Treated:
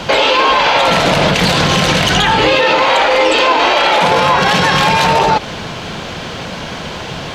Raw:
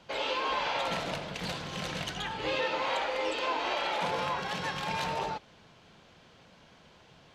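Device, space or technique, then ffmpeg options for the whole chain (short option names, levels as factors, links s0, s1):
loud club master: -af "acompressor=threshold=0.0178:ratio=2.5,asoftclip=type=hard:threshold=0.0473,alimiter=level_in=56.2:limit=0.891:release=50:level=0:latency=1,volume=0.794"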